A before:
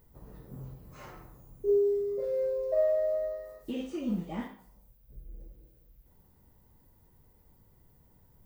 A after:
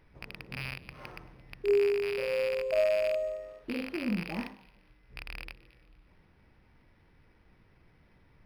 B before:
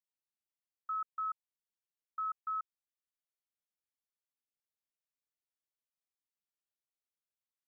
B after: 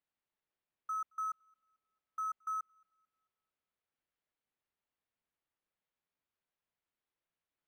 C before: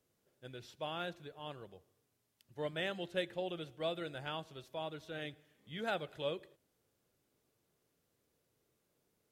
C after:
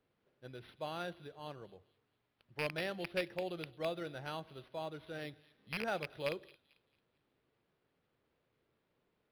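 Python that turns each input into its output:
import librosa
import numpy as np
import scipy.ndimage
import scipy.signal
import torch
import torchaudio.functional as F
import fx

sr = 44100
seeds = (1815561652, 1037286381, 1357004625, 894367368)

y = fx.rattle_buzz(x, sr, strikes_db=-45.0, level_db=-23.0)
y = fx.hum_notches(y, sr, base_hz=50, count=2)
y = fx.echo_wet_highpass(y, sr, ms=222, feedback_pct=36, hz=3700.0, wet_db=-13.0)
y = np.interp(np.arange(len(y)), np.arange(len(y))[::6], y[::6])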